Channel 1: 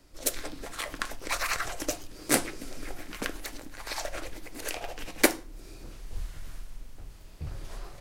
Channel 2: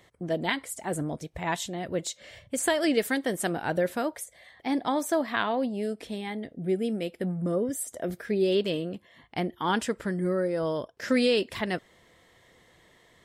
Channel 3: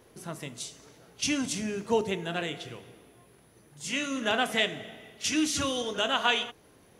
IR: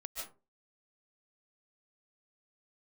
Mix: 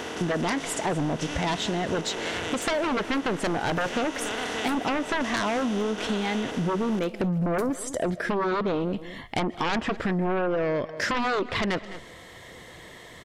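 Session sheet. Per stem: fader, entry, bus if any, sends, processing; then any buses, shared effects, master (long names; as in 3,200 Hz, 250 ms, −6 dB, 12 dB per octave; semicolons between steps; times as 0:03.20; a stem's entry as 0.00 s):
−15.5 dB, 2.35 s, muted 0:08.08–0:08.81, send −9.5 dB, no echo send, no processing
−3.5 dB, 0.00 s, send −20 dB, echo send −19.5 dB, treble cut that deepens with the level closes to 1,600 Hz, closed at −23 dBFS; sine wavefolder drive 13 dB, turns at −12.5 dBFS
−11.5 dB, 0.00 s, no send, no echo send, compressor on every frequency bin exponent 0.2; high-shelf EQ 9,400 Hz −7 dB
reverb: on, RT60 0.35 s, pre-delay 105 ms
echo: single-tap delay 210 ms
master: downward compressor 4 to 1, threshold −25 dBFS, peak gain reduction 7.5 dB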